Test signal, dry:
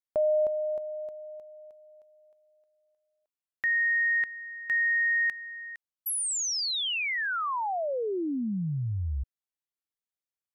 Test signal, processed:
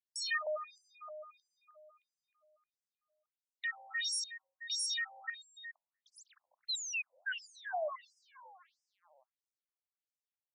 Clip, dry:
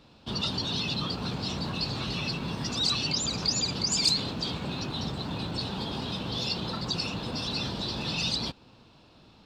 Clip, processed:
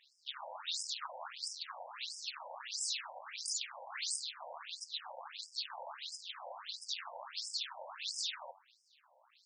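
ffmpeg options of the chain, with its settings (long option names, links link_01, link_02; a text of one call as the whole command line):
ffmpeg -i in.wav -af "aeval=exprs='(mod(13.3*val(0)+1,2)-1)/13.3':channel_layout=same,bandreject=frequency=96.14:width_type=h:width=4,bandreject=frequency=192.28:width_type=h:width=4,bandreject=frequency=288.42:width_type=h:width=4,bandreject=frequency=384.56:width_type=h:width=4,bandreject=frequency=480.7:width_type=h:width=4,bandreject=frequency=576.84:width_type=h:width=4,bandreject=frequency=672.98:width_type=h:width=4,bandreject=frequency=769.12:width_type=h:width=4,bandreject=frequency=865.26:width_type=h:width=4,bandreject=frequency=961.4:width_type=h:width=4,bandreject=frequency=1057.54:width_type=h:width=4,bandreject=frequency=1153.68:width_type=h:width=4,bandreject=frequency=1249.82:width_type=h:width=4,bandreject=frequency=1345.96:width_type=h:width=4,bandreject=frequency=1442.1:width_type=h:width=4,bandreject=frequency=1538.24:width_type=h:width=4,bandreject=frequency=1634.38:width_type=h:width=4,bandreject=frequency=1730.52:width_type=h:width=4,bandreject=frequency=1826.66:width_type=h:width=4,bandreject=frequency=1922.8:width_type=h:width=4,bandreject=frequency=2018.94:width_type=h:width=4,bandreject=frequency=2115.08:width_type=h:width=4,bandreject=frequency=2211.22:width_type=h:width=4,bandreject=frequency=2307.36:width_type=h:width=4,bandreject=frequency=2403.5:width_type=h:width=4,bandreject=frequency=2499.64:width_type=h:width=4,aeval=exprs='max(val(0),0)':channel_layout=same,afftfilt=real='re*between(b*sr/1024,680*pow(7000/680,0.5+0.5*sin(2*PI*1.5*pts/sr))/1.41,680*pow(7000/680,0.5+0.5*sin(2*PI*1.5*pts/sr))*1.41)':imag='im*between(b*sr/1024,680*pow(7000/680,0.5+0.5*sin(2*PI*1.5*pts/sr))/1.41,680*pow(7000/680,0.5+0.5*sin(2*PI*1.5*pts/sr))*1.41)':win_size=1024:overlap=0.75,volume=1.5dB" out.wav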